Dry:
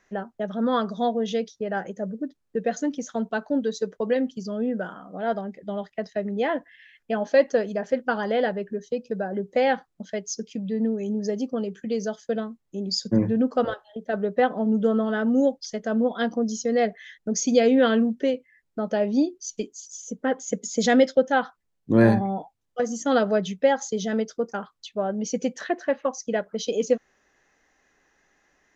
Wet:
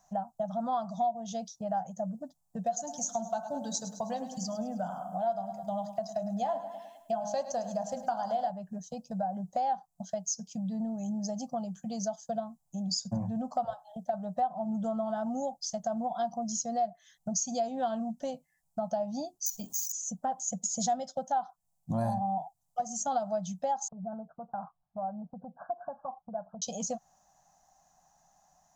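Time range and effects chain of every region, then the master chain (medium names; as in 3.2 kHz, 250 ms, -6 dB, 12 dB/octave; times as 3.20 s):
2.66–8.50 s: treble shelf 4.9 kHz +9.5 dB + de-hum 51.82 Hz, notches 32 + feedback delay 104 ms, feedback 50%, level -14 dB
19.46–19.92 s: careless resampling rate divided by 2×, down none, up hold + level flattener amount 50%
23.88–26.62 s: compression 2.5:1, threshold -36 dBFS + brick-wall FIR low-pass 1.7 kHz
whole clip: FFT filter 110 Hz 0 dB, 160 Hz +8 dB, 410 Hz -26 dB, 720 Hz +13 dB, 2 kHz -19 dB, 7.6 kHz +11 dB; compression 3:1, threshold -29 dBFS; trim -2 dB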